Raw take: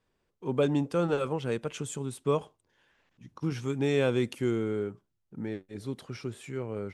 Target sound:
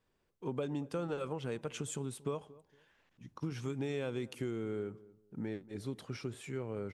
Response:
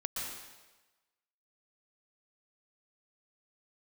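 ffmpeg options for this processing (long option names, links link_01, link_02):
-filter_complex "[0:a]acompressor=threshold=-32dB:ratio=6,asplit=2[link_01][link_02];[link_02]adelay=231,lowpass=frequency=840:poles=1,volume=-19dB,asplit=2[link_03][link_04];[link_04]adelay=231,lowpass=frequency=840:poles=1,volume=0.26[link_05];[link_01][link_03][link_05]amix=inputs=3:normalize=0,volume=-2dB"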